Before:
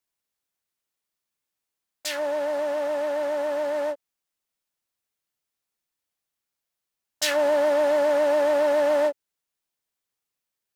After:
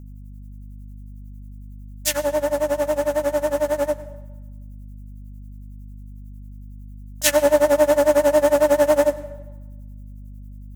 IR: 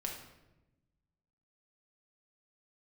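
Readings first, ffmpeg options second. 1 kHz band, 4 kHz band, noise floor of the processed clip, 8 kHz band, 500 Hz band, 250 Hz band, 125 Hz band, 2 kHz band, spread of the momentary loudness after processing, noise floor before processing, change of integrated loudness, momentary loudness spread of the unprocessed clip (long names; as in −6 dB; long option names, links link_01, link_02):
+3.5 dB, +2.5 dB, −38 dBFS, +9.5 dB, +4.5 dB, +7.5 dB, can't be measured, +3.0 dB, 9 LU, −85 dBFS, +4.5 dB, 9 LU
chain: -filter_complex "[0:a]lowshelf=frequency=350:gain=8,tremolo=f=11:d=0.94,aexciter=amount=2.9:drive=7:freq=6000,aeval=exprs='val(0)+0.00631*(sin(2*PI*50*n/s)+sin(2*PI*2*50*n/s)/2+sin(2*PI*3*50*n/s)/3+sin(2*PI*4*50*n/s)/4+sin(2*PI*5*50*n/s)/5)':channel_layout=same,asplit=2[link_01][link_02];[1:a]atrim=start_sample=2205,asetrate=32634,aresample=44100,adelay=102[link_03];[link_02][link_03]afir=irnorm=-1:irlink=0,volume=-18dB[link_04];[link_01][link_04]amix=inputs=2:normalize=0,volume=6.5dB"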